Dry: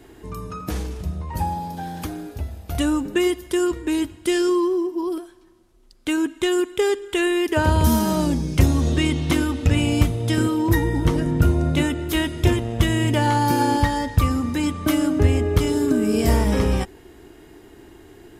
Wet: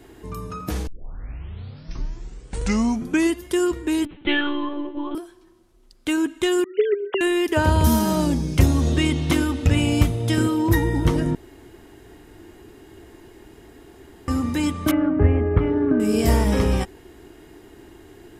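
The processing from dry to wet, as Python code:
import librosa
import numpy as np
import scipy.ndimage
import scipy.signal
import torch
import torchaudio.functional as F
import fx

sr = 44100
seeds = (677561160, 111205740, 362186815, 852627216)

y = fx.lpc_monotone(x, sr, seeds[0], pitch_hz=290.0, order=16, at=(4.05, 5.15))
y = fx.sine_speech(y, sr, at=(6.64, 7.21))
y = fx.lowpass(y, sr, hz=2000.0, slope=24, at=(14.91, 16.0))
y = fx.edit(y, sr, fx.tape_start(start_s=0.87, length_s=2.58),
    fx.room_tone_fill(start_s=11.35, length_s=2.93), tone=tone)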